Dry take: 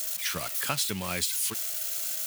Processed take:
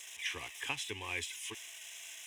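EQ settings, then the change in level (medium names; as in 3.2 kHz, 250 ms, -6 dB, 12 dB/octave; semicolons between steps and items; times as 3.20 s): distance through air 81 m; peaking EQ 4 kHz +9 dB 1.8 oct; static phaser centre 910 Hz, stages 8; -5.5 dB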